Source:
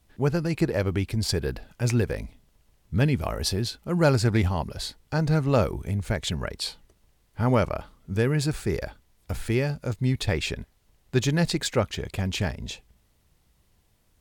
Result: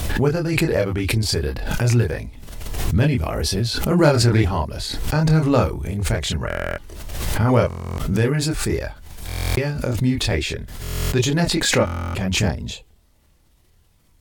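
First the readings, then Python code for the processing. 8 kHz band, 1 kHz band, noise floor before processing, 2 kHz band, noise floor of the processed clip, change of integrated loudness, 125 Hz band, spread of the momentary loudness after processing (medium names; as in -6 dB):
+8.5 dB, +6.0 dB, -66 dBFS, +7.0 dB, -57 dBFS, +5.5 dB, +5.5 dB, 13 LU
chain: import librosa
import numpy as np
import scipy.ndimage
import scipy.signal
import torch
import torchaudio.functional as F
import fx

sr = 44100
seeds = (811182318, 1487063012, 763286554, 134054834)

y = fx.chorus_voices(x, sr, voices=4, hz=0.31, base_ms=26, depth_ms=1.8, mix_pct=45)
y = fx.buffer_glitch(y, sr, at_s=(6.48, 7.68, 9.27, 10.82, 11.85), block=1024, repeats=12)
y = fx.pre_swell(y, sr, db_per_s=38.0)
y = F.gain(torch.from_numpy(y), 7.0).numpy()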